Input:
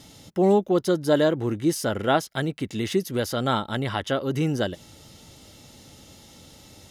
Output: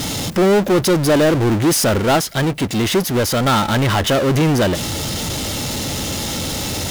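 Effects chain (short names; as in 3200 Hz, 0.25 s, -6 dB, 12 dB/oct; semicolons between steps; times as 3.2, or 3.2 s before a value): power-law curve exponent 0.35; 1.99–3.46 upward expander 1.5:1, over -27 dBFS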